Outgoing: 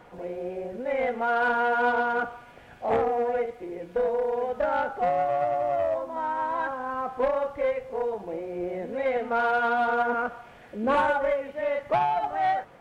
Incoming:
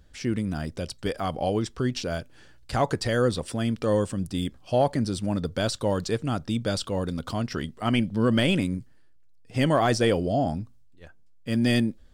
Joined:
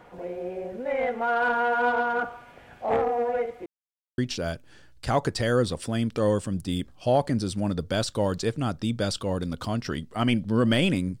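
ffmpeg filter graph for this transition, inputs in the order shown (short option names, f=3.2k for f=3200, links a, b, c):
-filter_complex "[0:a]apad=whole_dur=11.2,atrim=end=11.2,asplit=2[a][b];[a]atrim=end=3.66,asetpts=PTS-STARTPTS,afade=t=out:st=3.656:d=0.004:c=hsin[c];[b]atrim=start=3.66:end=4.18,asetpts=PTS-STARTPTS,volume=0[d];[1:a]atrim=start=1.84:end=8.86,asetpts=PTS-STARTPTS,afade=t=in:d=0.004:c=hsin[e];[c][d][e]concat=n=3:v=0:a=1"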